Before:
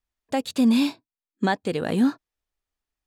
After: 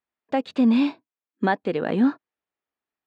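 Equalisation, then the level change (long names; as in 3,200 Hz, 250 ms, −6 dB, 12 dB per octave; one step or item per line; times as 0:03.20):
band-pass filter 190–2,500 Hz
+2.0 dB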